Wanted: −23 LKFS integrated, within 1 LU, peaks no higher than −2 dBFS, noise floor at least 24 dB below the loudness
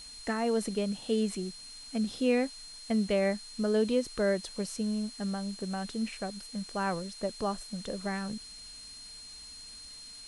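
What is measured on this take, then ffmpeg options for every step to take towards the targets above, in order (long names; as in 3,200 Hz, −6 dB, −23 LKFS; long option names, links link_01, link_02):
interfering tone 4,200 Hz; level of the tone −46 dBFS; background noise floor −48 dBFS; target noise floor −57 dBFS; integrated loudness −32.5 LKFS; sample peak −16.0 dBFS; target loudness −23.0 LKFS
→ -af "bandreject=frequency=4200:width=30"
-af "afftdn=noise_reduction=9:noise_floor=-48"
-af "volume=9.5dB"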